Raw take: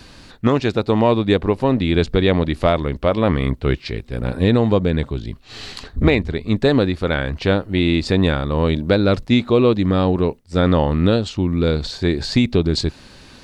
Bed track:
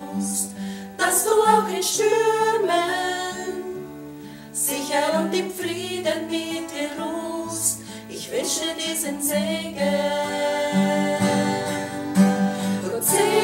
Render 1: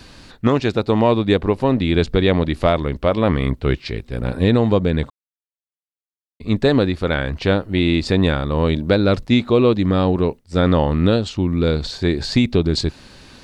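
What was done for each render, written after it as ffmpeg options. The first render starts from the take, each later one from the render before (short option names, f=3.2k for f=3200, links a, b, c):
-filter_complex "[0:a]asplit=3[a][b][c];[a]atrim=end=5.1,asetpts=PTS-STARTPTS,afade=t=out:st=5.096:d=0.004:c=hsin[d];[b]atrim=start=5.1:end=6.4,asetpts=PTS-STARTPTS,volume=0[e];[c]atrim=start=6.4,asetpts=PTS-STARTPTS,afade=t=in:d=0.004:c=hsin[f];[d][e][f]concat=n=3:v=0:a=1"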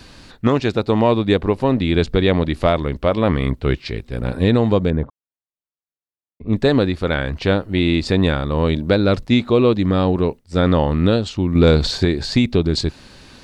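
-filter_complex "[0:a]asettb=1/sr,asplit=3[a][b][c];[a]atrim=end=4.904[d];[b]atrim=start=4.9:end=6.53,asetpts=PTS-STARTPTS,afade=t=in:d=0.004:c=qsin,afade=t=out:st=1.626:d=0.004:c=qsin,lowpass=1.1k[e];[c]atrim=start=6.526[f];[d][e]acrossfade=d=0.004:c1=hsin:c2=qsin[g];[g][f]acrossfade=d=0.004:c1=qsin:c2=hsin,asettb=1/sr,asplit=3[h][i][j];[h]atrim=end=11.554[k];[i]atrim=start=11.55:end=12.05,asetpts=PTS-STARTPTS,afade=t=in:d=0.004:c=qsin,afade=t=out:st=0.496:d=0.004:c=qsin,acontrast=69[l];[j]atrim=start=12.046[m];[k][l]acrossfade=d=0.004:c1=hsin:c2=qsin[n];[n][m]acrossfade=d=0.004:c1=qsin:c2=hsin"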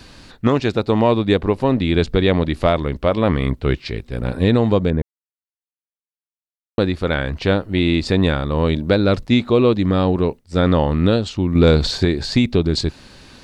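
-filter_complex "[0:a]asplit=3[a][b][c];[a]atrim=end=5.02,asetpts=PTS-STARTPTS,afade=t=out:st=5.016:d=0.004:c=hsin[d];[b]atrim=start=5.02:end=6.78,asetpts=PTS-STARTPTS,volume=0[e];[c]atrim=start=6.78,asetpts=PTS-STARTPTS,afade=t=in:d=0.004:c=hsin[f];[d][e][f]concat=n=3:v=0:a=1"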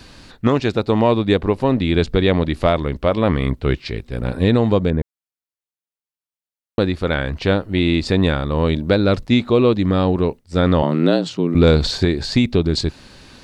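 -filter_complex "[0:a]asettb=1/sr,asplit=3[a][b][c];[a]atrim=end=10.824[d];[b]atrim=start=10.82:end=11.55,asetpts=PTS-STARTPTS,afade=t=in:d=0.004:c=qsin,afade=t=out:st=0.726:d=0.004:c=qsin,afreqshift=78[e];[c]atrim=start=11.546[f];[d][e]acrossfade=d=0.004:c1=hsin:c2=qsin[g];[g][f]acrossfade=d=0.004:c1=qsin:c2=hsin"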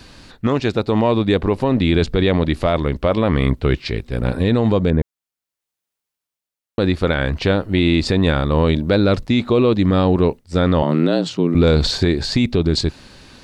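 -af "dynaudnorm=f=120:g=11:m=11.5dB,alimiter=limit=-6.5dB:level=0:latency=1:release=22"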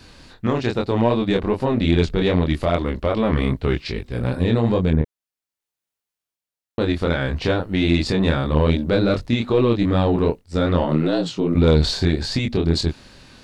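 -af "flanger=delay=22.5:depth=4:speed=2.5,aeval=exprs='0.473*(cos(1*acos(clip(val(0)/0.473,-1,1)))-cos(1*PI/2))+0.0237*(cos(4*acos(clip(val(0)/0.473,-1,1)))-cos(4*PI/2))':c=same"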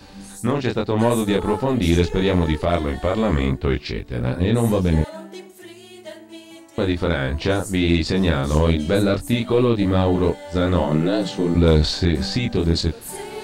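-filter_complex "[1:a]volume=-14dB[a];[0:a][a]amix=inputs=2:normalize=0"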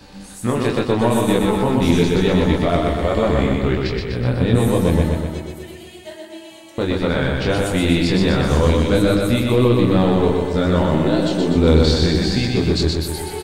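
-filter_complex "[0:a]asplit=2[a][b];[b]adelay=16,volume=-11.5dB[c];[a][c]amix=inputs=2:normalize=0,aecho=1:1:124|248|372|496|620|744|868|992|1116:0.708|0.425|0.255|0.153|0.0917|0.055|0.033|0.0198|0.0119"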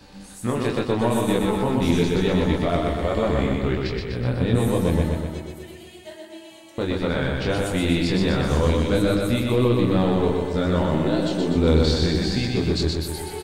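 -af "volume=-4.5dB"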